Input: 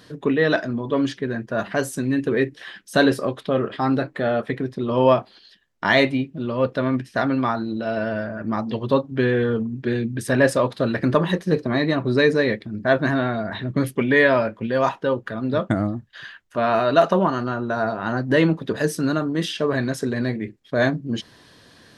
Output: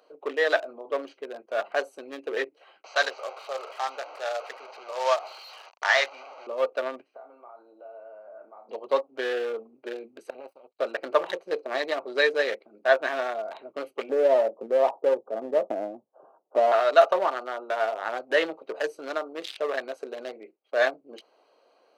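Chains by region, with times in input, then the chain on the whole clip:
0:02.84–0:06.47: linear delta modulator 32 kbit/s, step −22 dBFS + high-pass filter 780 Hz
0:07.04–0:08.69: resonant band-pass 880 Hz, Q 0.58 + downward compressor 16 to 1, threshold −36 dBFS + flutter between parallel walls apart 5.7 metres, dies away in 0.28 s
0:10.30–0:10.79: running median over 3 samples + drawn EQ curve 170 Hz 0 dB, 840 Hz −26 dB, 1,500 Hz −18 dB, 2,400 Hz −7 dB, 4,500 Hz −8 dB, 7,100 Hz −16 dB, 12,000 Hz +6 dB + power curve on the samples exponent 2
0:14.09–0:16.72: inverse Chebyshev low-pass filter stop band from 1,900 Hz + spectral tilt −3.5 dB per octave + multiband upward and downward compressor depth 70%
whole clip: adaptive Wiener filter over 25 samples; high-pass filter 520 Hz 24 dB per octave; notch filter 1,000 Hz, Q 10

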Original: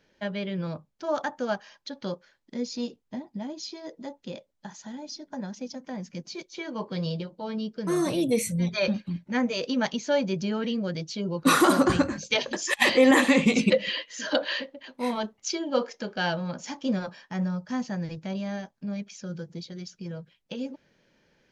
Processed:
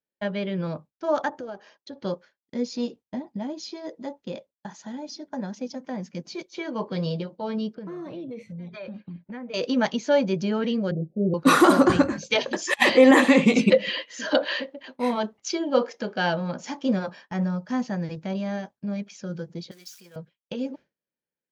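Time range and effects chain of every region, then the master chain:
0:01.29–0:02.05: parametric band 390 Hz +10.5 dB 1 octave + downward compressor 4 to 1, threshold −38 dBFS + amplitude modulation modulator 170 Hz, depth 15%
0:07.75–0:09.54: downward compressor 12 to 1, threshold −36 dBFS + high-frequency loss of the air 250 metres
0:10.91–0:11.34: Chebyshev low-pass filter 740 Hz, order 8 + comb filter 5.4 ms, depth 73%
0:19.71–0:20.16: spike at every zero crossing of −38.5 dBFS + high-pass filter 1,500 Hz 6 dB per octave
whole clip: high-pass filter 340 Hz 6 dB per octave; downward expander −46 dBFS; spectral tilt −2 dB per octave; level +4 dB

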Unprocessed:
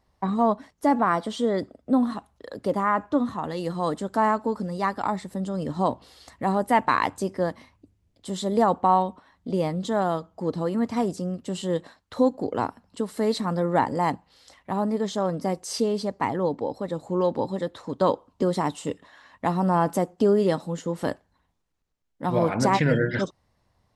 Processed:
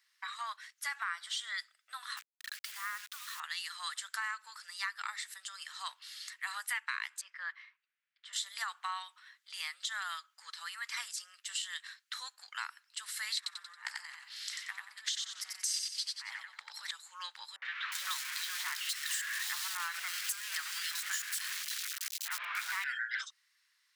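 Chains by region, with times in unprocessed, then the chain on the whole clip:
0:02.17–0:03.40: low-shelf EQ 270 Hz −6 dB + downward compressor 3 to 1, threshold −31 dBFS + bit-depth reduction 8 bits, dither none
0:07.21–0:08.33: low-pass filter 2,000 Hz + parametric band 760 Hz −5 dB 0.29 octaves
0:13.37–0:16.91: compressor whose output falls as the input rises −31 dBFS, ratio −0.5 + repeating echo 91 ms, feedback 30%, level −3.5 dB + highs frequency-modulated by the lows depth 0.15 ms
0:17.56–0:22.84: converter with a step at zero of −27.5 dBFS + three-band delay without the direct sound lows, mids, highs 60/360 ms, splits 660/2,800 Hz
whole clip: Butterworth high-pass 1,500 Hz 36 dB per octave; downward compressor 6 to 1, threshold −39 dBFS; level +5.5 dB

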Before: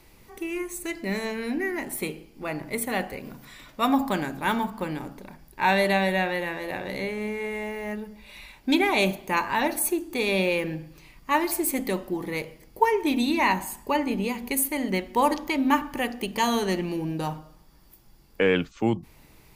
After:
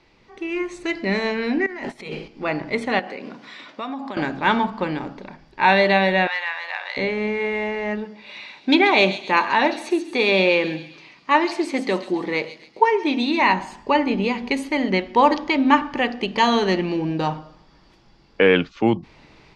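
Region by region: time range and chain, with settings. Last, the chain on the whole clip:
0:01.66–0:02.28: high-shelf EQ 4,800 Hz +4 dB + notch filter 320 Hz, Q 5.6 + compressor whose output falls as the input rises −39 dBFS
0:02.99–0:04.17: high-pass filter 190 Hz 24 dB per octave + downward compressor, threshold −34 dBFS
0:06.27–0:06.97: high-pass filter 890 Hz 24 dB per octave + gain into a clipping stage and back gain 23 dB
0:08.05–0:13.42: high-pass filter 190 Hz + delay with a high-pass on its return 135 ms, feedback 48%, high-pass 4,600 Hz, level −4.5 dB
whole clip: low-pass filter 5,000 Hz 24 dB per octave; low-shelf EQ 120 Hz −9.5 dB; automatic gain control gain up to 8 dB

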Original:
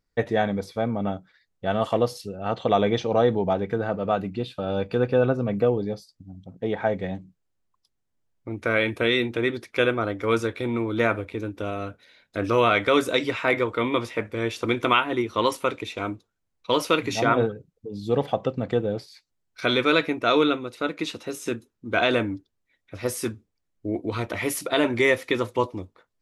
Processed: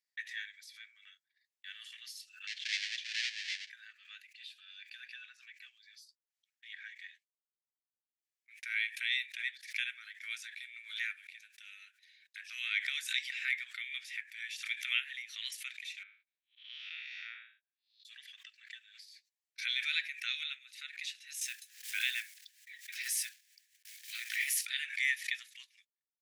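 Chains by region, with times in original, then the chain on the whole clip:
0:02.47–0:03.70: each half-wave held at its own peak + low-pass filter 5,100 Hz 24 dB per octave + parametric band 1,100 Hz −12 dB 1.2 octaves
0:16.03–0:18.05: spectrum smeared in time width 190 ms + low-pass filter 3,500 Hz 24 dB per octave
0:21.41–0:24.67: one scale factor per block 5 bits + envelope flattener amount 50%
whole clip: Chebyshev high-pass filter 1,700 Hz, order 6; noise gate −59 dBFS, range −38 dB; background raised ahead of every attack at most 110 dB per second; level −7 dB

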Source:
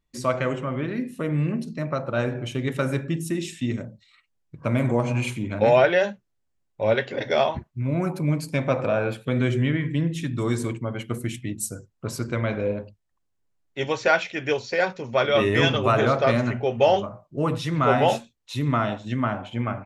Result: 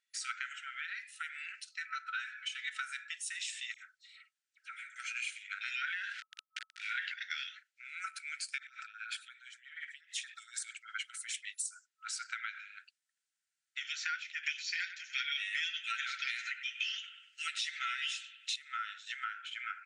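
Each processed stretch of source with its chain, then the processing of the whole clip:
0:01.78–0:02.83: high-shelf EQ 10,000 Hz −9 dB + comb filter 4 ms, depth 74%
0:03.74–0:04.96: low-shelf EQ 350 Hz +6 dB + downward compressor 4 to 1, threshold −29 dBFS + all-pass dispersion lows, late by 63 ms, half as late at 1,900 Hz
0:05.87–0:07.14: log-companded quantiser 6 bits + band-pass filter 480–3,400 Hz + envelope flattener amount 70%
0:08.58–0:11.71: compressor whose output falls as the input rises −29 dBFS, ratio −0.5 + auto-filter notch sine 8.5 Hz 890–3,000 Hz
0:12.49–0:13.85: high-shelf EQ 9,200 Hz +9 dB + downward compressor, threshold −27 dBFS
0:14.43–0:18.56: flat-topped bell 4,000 Hz +12 dB 2.6 octaves + comb filter 5.8 ms, depth 46% + bucket-brigade delay 98 ms, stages 2,048, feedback 34%, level −14.5 dB
whole clip: brick-wall band-pass 1,300–10,000 Hz; downward compressor 6 to 1, threshold −37 dBFS; level +1 dB

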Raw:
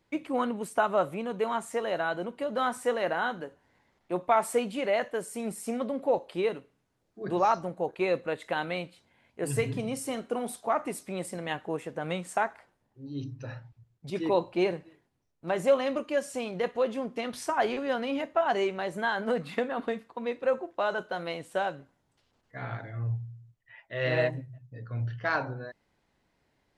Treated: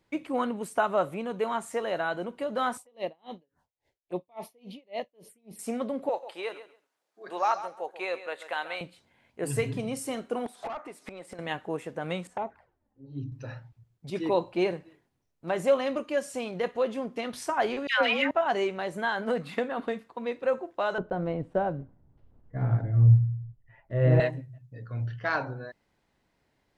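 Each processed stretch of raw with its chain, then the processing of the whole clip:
0:02.77–0:05.59: phaser swept by the level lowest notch 180 Hz, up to 1,500 Hz, full sweep at −30.5 dBFS + tremolo with a sine in dB 3.6 Hz, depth 36 dB
0:06.09–0:08.81: high-pass filter 660 Hz + repeating echo 136 ms, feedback 17%, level −13 dB
0:10.46–0:11.39: gate with flip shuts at −29 dBFS, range −24 dB + mid-hump overdrive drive 28 dB, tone 2,100 Hz, clips at −26 dBFS
0:12.27–0:13.32: low-pass filter 1,100 Hz 6 dB per octave + parametric band 64 Hz +5.5 dB 2.1 octaves + flanger swept by the level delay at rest 4.5 ms, full sweep at −26.5 dBFS
0:17.87–0:18.31: parametric band 2,200 Hz +14.5 dB 2.3 octaves + all-pass dispersion lows, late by 146 ms, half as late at 910 Hz
0:20.98–0:24.20: one scale factor per block 5 bits + low-pass filter 1,500 Hz 6 dB per octave + spectral tilt −4.5 dB per octave
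whole clip: no processing

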